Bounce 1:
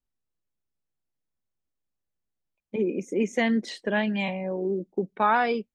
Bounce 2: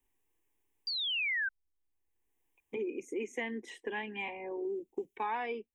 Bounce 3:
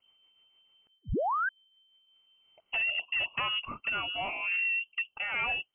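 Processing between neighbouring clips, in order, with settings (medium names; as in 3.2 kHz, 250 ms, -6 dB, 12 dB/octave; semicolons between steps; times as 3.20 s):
static phaser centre 910 Hz, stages 8; painted sound fall, 0.87–1.49 s, 1.5–4.8 kHz -23 dBFS; three bands compressed up and down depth 70%; trim -8.5 dB
rotary cabinet horn 6.7 Hz, later 1 Hz, at 1.63 s; in parallel at -5 dB: sine folder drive 9 dB, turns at -26.5 dBFS; on the sum: frequency inversion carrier 3.1 kHz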